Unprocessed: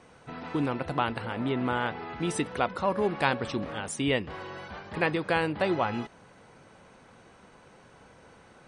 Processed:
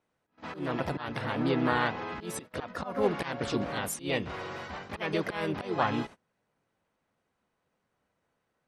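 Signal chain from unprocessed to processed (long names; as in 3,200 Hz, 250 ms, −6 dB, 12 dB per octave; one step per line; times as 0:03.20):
volume swells 238 ms
pitch-shifted copies added +4 semitones −3 dB
noise gate −42 dBFS, range −26 dB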